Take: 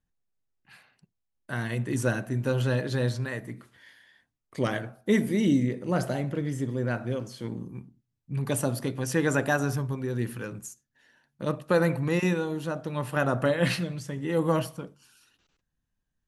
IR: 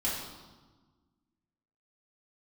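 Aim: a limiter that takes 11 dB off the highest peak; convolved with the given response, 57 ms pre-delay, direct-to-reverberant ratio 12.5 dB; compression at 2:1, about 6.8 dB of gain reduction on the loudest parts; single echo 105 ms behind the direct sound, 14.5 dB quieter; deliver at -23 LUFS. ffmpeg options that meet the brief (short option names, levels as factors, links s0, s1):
-filter_complex "[0:a]acompressor=threshold=0.0316:ratio=2,alimiter=level_in=1.26:limit=0.0631:level=0:latency=1,volume=0.794,aecho=1:1:105:0.188,asplit=2[s0][s1];[1:a]atrim=start_sample=2205,adelay=57[s2];[s1][s2]afir=irnorm=-1:irlink=0,volume=0.112[s3];[s0][s3]amix=inputs=2:normalize=0,volume=4.22"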